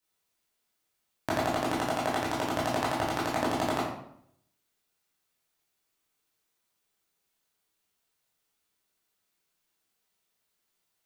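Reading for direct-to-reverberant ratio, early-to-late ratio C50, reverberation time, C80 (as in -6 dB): -7.5 dB, 2.0 dB, 0.70 s, 6.0 dB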